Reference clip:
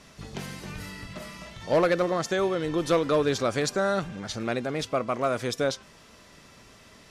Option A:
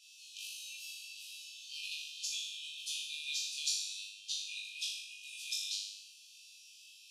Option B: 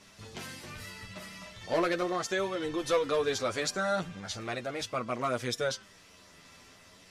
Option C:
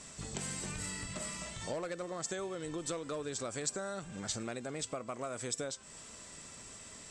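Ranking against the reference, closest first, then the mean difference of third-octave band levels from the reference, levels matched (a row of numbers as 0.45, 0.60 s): B, C, A; 3.0, 6.5, 24.5 dB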